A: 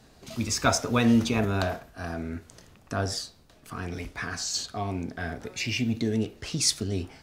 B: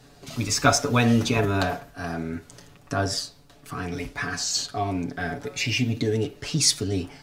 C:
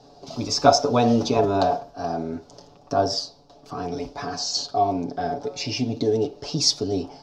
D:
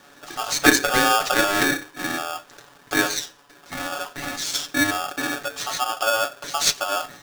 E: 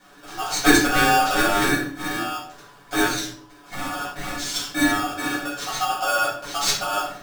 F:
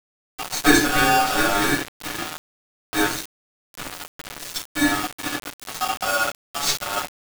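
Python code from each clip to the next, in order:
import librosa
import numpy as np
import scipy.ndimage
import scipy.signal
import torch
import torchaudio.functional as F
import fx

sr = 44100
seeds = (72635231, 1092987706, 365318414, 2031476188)

y1 = x + 0.65 * np.pad(x, (int(7.0 * sr / 1000.0), 0))[:len(x)]
y1 = y1 * librosa.db_to_amplitude(2.5)
y2 = fx.curve_eq(y1, sr, hz=(110.0, 790.0, 1900.0, 5300.0, 9100.0), db=(0, 14, -9, 9, -14))
y2 = y2 * librosa.db_to_amplitude(-5.0)
y3 = y2 * np.sign(np.sin(2.0 * np.pi * 1000.0 * np.arange(len(y2)) / sr))
y4 = fx.room_shoebox(y3, sr, seeds[0], volume_m3=500.0, walls='furnished', distance_m=7.7)
y4 = y4 * librosa.db_to_amplitude(-10.5)
y5 = np.where(np.abs(y4) >= 10.0 ** (-22.5 / 20.0), y4, 0.0)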